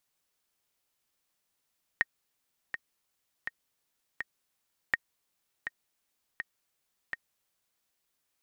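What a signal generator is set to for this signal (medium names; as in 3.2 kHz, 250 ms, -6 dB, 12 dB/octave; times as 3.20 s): metronome 82 bpm, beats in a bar 4, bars 2, 1.86 kHz, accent 9.5 dB -11.5 dBFS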